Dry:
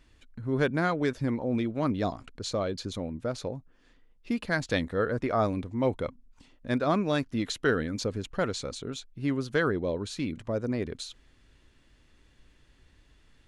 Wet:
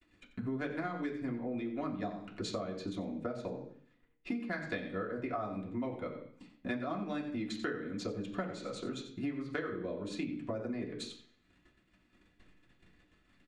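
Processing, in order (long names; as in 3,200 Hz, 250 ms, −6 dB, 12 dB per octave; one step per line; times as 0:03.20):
downward expander −54 dBFS
low-shelf EQ 260 Hz −7.5 dB
transient designer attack +7 dB, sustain −4 dB
low-pass filter 3,300 Hz 6 dB per octave
parametric band 1,600 Hz −4.5 dB 2.3 octaves
single-tap delay 90 ms −13 dB
convolution reverb RT60 0.50 s, pre-delay 3 ms, DRR −2.5 dB
downward compressor 6 to 1, threshold −35 dBFS, peak gain reduction 17 dB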